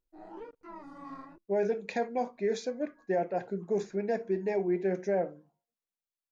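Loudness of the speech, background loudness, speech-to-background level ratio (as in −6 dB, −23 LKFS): −32.0 LKFS, −47.5 LKFS, 15.5 dB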